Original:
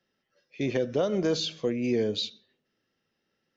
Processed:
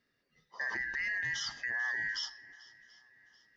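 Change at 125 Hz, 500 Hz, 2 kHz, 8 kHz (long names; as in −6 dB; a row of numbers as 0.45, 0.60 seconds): −20.5 dB, −31.0 dB, +11.0 dB, can't be measured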